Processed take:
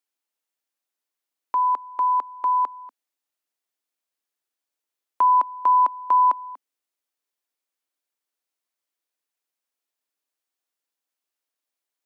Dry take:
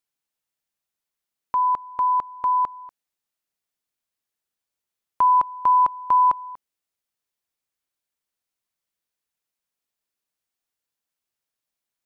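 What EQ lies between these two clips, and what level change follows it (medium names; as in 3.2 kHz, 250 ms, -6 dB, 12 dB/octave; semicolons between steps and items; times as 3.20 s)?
Chebyshev high-pass 260 Hz, order 4; 0.0 dB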